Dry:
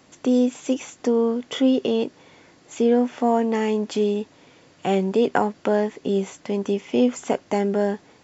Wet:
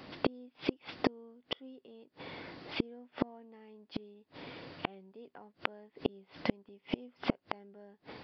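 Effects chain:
gate with flip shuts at −19 dBFS, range −37 dB
downsampling to 11,025 Hz
level +4.5 dB

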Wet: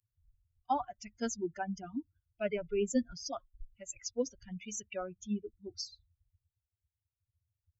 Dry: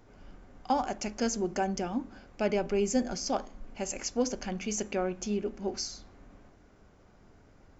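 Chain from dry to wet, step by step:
spectral dynamics exaggerated over time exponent 3
notch filter 4,300 Hz, Q 27

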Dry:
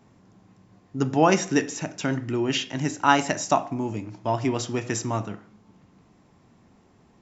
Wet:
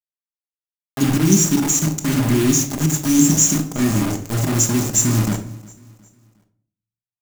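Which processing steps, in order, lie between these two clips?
mu-law and A-law mismatch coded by mu
Chebyshev band-stop filter 320–6,400 Hz, order 4
high-shelf EQ 2,600 Hz +9.5 dB
volume swells 109 ms
automatic gain control gain up to 12 dB
bit reduction 4 bits
repeating echo 360 ms, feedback 42%, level −23 dB
rectangular room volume 620 cubic metres, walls furnished, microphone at 1.3 metres
level −1 dB

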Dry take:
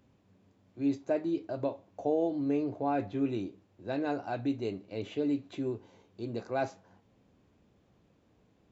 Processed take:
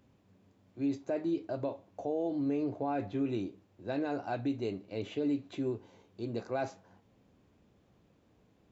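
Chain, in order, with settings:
brickwall limiter −24.5 dBFS, peak gain reduction 6 dB

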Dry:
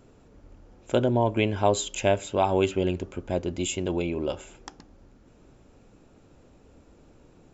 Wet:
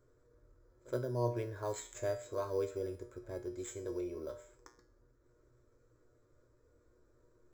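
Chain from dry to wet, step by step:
pitch shifter +0.5 semitones
phaser with its sweep stopped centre 780 Hz, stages 6
in parallel at −10 dB: sample-rate reduction 5,400 Hz, jitter 0%
on the sum: tuned comb filter 120 Hz, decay 0.41 s, harmonics all, mix 80%
echo ahead of the sound 71 ms −22 dB
level −4 dB

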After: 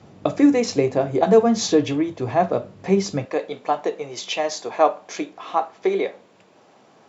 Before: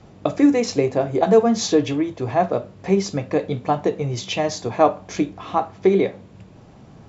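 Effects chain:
high-pass filter 92 Hz 12 dB per octave, from 0:03.25 440 Hz

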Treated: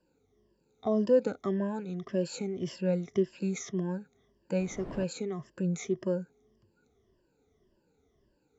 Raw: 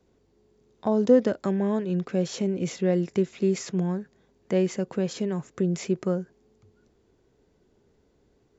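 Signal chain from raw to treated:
rippled gain that drifts along the octave scale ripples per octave 1.3, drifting −1.8 Hz, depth 18 dB
0:04.59–0:05.03: wind on the microphone 420 Hz −25 dBFS
level −9 dB

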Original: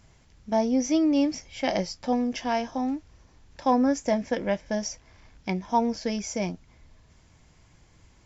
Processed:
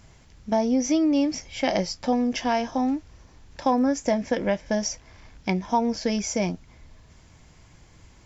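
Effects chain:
downward compressor 2.5 to 1, threshold −25 dBFS, peak gain reduction 6 dB
0:03.65–0:04.15: surface crackle 30 per second → 11 per second −44 dBFS
level +5 dB

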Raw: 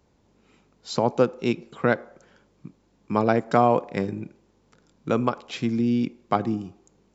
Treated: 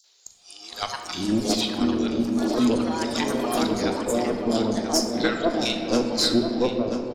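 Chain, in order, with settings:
played backwards from end to start
octave-band graphic EQ 125/250/500/1,000/4,000 Hz −10/+6/+3/−9/+10 dB
in parallel at +0.5 dB: downward compressor, threshold −31 dBFS, peak gain reduction 18 dB
on the sum: delay with pitch and tempo change per echo 307 ms, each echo +5 semitones, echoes 3, each echo −6 dB
three-band delay without the direct sound highs, mids, lows 40/720 ms, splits 850/4,400 Hz
speech leveller within 4 dB 0.5 s
high shelf with overshoot 3,300 Hz +7.5 dB, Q 1.5
tube saturation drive 11 dB, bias 0.55
reverb reduction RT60 0.92 s
feedback echo with a low-pass in the loop 988 ms, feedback 45%, low-pass 4,800 Hz, level −8.5 dB
on a send at −4 dB: convolution reverb RT60 2.8 s, pre-delay 3 ms

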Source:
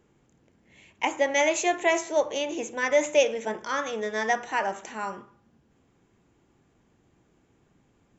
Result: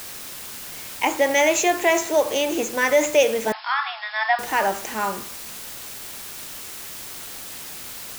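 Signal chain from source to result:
in parallel at +3 dB: brickwall limiter −20 dBFS, peak gain reduction 10.5 dB
on the sum: bit-depth reduction 6 bits, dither triangular
0:03.52–0:04.39: linear-phase brick-wall band-pass 660–5,400 Hz

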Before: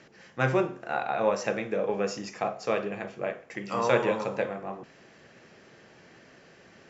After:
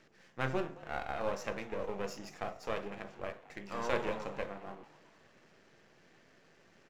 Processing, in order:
gain on one half-wave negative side −12 dB
echo with shifted repeats 219 ms, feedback 51%, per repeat +150 Hz, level −20.5 dB
level −6.5 dB

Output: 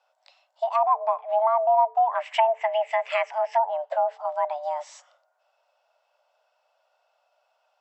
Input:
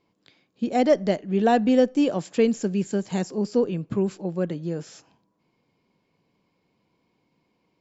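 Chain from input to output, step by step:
treble cut that deepens with the level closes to 530 Hz, closed at −17 dBFS
0:02.15–0:03.59: flat-topped bell 1,800 Hz +15.5 dB 1.3 octaves
frequency shifter +440 Hz

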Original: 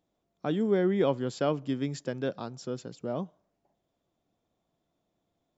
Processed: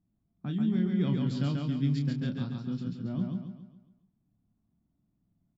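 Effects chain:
low-pass that shuts in the quiet parts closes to 1,200 Hz, open at −24.5 dBFS
drawn EQ curve 220 Hz 0 dB, 490 Hz −25 dB, 4,400 Hz +1 dB, 6,500 Hz −5 dB
reversed playback
downward compressor, threshold −34 dBFS, peak gain reduction 7 dB
reversed playback
high-shelf EQ 2,800 Hz −11 dB
double-tracking delay 28 ms −8 dB
on a send: repeating echo 138 ms, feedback 44%, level −3 dB
on the sum: level +7 dB

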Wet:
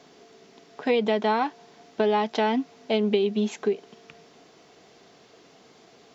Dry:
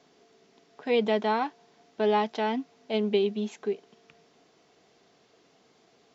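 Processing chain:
downward compressor 5 to 1, threshold −28 dBFS, peak gain reduction 8.5 dB
level +8.5 dB

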